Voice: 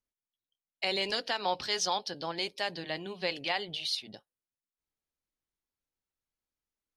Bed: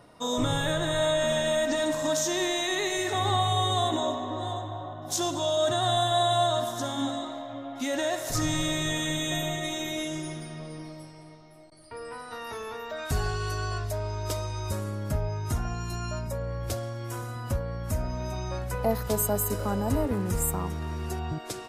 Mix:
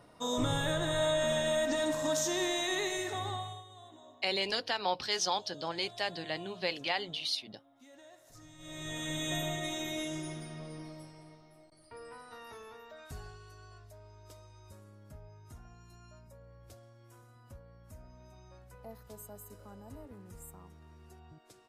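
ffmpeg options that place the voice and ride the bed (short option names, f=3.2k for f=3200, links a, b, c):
-filter_complex "[0:a]adelay=3400,volume=-1dB[a];[1:a]volume=18dB,afade=t=out:st=2.78:d=0.86:silence=0.0707946,afade=t=in:st=8.58:d=0.73:silence=0.0749894,afade=t=out:st=11:d=2.45:silence=0.133352[b];[a][b]amix=inputs=2:normalize=0"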